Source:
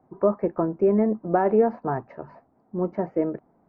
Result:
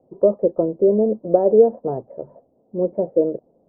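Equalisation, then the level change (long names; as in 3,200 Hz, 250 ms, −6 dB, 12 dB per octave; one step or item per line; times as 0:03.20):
low-pass with resonance 530 Hz, resonance Q 4.9
high-frequency loss of the air 390 metres
−1.0 dB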